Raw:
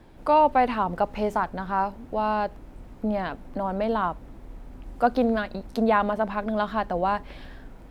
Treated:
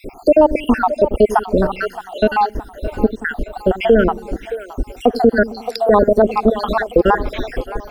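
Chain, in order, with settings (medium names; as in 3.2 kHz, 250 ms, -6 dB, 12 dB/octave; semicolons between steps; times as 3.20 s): random holes in the spectrogram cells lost 75%; dynamic bell 2.2 kHz, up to -7 dB, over -46 dBFS, Q 1; in parallel at +0.5 dB: compression, threshold -40 dBFS, peak gain reduction 21.5 dB; on the sum: fifteen-band graphic EQ 160 Hz -9 dB, 400 Hz +7 dB, 1 kHz -9 dB, 4 kHz -3 dB; on a send: two-band feedback delay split 420 Hz, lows 90 ms, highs 619 ms, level -16 dB; on the sum: loudness maximiser +19.5 dB; trim -1 dB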